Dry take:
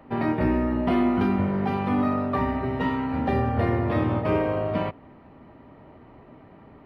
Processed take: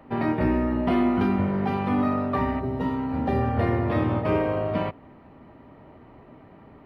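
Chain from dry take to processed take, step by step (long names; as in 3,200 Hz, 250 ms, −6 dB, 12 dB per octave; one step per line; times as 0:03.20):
0:02.59–0:03.40: parametric band 2,200 Hz −12 dB → −3 dB 2 octaves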